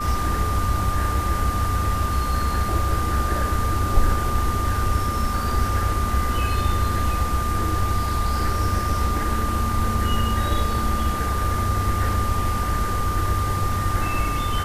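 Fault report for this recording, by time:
whine 1.2 kHz -26 dBFS

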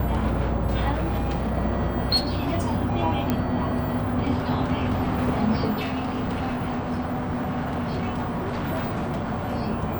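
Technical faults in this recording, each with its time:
0.92–1.56 s: clipped -21.5 dBFS
2.16–2.59 s: clipped -20 dBFS
3.30 s: pop -10 dBFS
5.80–9.55 s: clipped -23 dBFS

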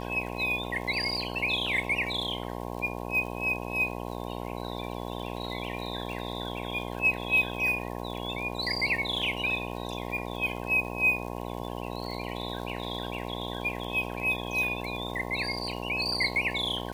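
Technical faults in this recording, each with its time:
buzz 60 Hz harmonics 18 -36 dBFS
crackle 66 per s -37 dBFS

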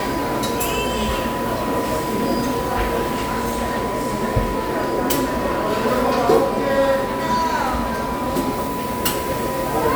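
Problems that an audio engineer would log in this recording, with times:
whine 990 Hz -26 dBFS

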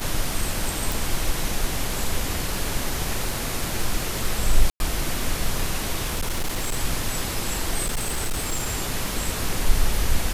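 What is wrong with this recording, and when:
crackle 11 per s -25 dBFS
0.92 s: pop
4.70–4.80 s: dropout 101 ms
6.04–6.78 s: clipped -20.5 dBFS
7.83–8.73 s: clipped -20.5 dBFS

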